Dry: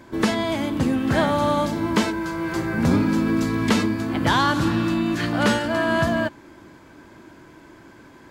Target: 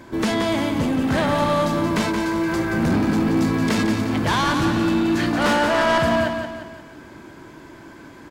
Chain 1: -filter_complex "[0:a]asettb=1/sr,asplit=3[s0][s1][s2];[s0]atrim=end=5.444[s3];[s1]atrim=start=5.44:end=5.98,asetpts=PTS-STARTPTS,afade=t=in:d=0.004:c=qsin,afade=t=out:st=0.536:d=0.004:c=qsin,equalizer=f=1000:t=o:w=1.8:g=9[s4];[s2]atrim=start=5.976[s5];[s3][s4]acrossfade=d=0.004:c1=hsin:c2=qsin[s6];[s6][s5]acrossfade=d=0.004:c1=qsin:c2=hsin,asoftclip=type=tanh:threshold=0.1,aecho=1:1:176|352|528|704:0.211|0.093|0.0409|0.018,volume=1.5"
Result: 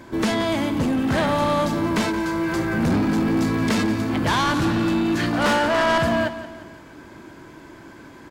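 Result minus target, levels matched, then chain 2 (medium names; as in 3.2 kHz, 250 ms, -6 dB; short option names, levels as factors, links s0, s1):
echo-to-direct -7 dB
-filter_complex "[0:a]asettb=1/sr,asplit=3[s0][s1][s2];[s0]atrim=end=5.444[s3];[s1]atrim=start=5.44:end=5.98,asetpts=PTS-STARTPTS,afade=t=in:d=0.004:c=qsin,afade=t=out:st=0.536:d=0.004:c=qsin,equalizer=f=1000:t=o:w=1.8:g=9[s4];[s2]atrim=start=5.976[s5];[s3][s4]acrossfade=d=0.004:c1=hsin:c2=qsin[s6];[s6][s5]acrossfade=d=0.004:c1=qsin:c2=hsin,asoftclip=type=tanh:threshold=0.1,aecho=1:1:176|352|528|704|880:0.473|0.208|0.0916|0.0403|0.0177,volume=1.5"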